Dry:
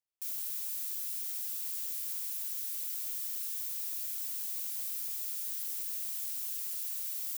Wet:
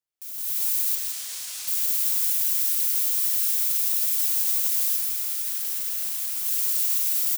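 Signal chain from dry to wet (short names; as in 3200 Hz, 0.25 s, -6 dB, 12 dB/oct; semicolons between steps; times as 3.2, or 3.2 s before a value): limiter -29.5 dBFS, peak gain reduction 6 dB; 0.95–1.68 LPF 7600 Hz 12 dB/oct; 4.96–6.46 high shelf 2900 Hz -5.5 dB; feedback echo 0.167 s, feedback 20%, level -5.5 dB; AGC gain up to 15 dB; lo-fi delay 0.254 s, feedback 80%, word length 7-bit, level -14 dB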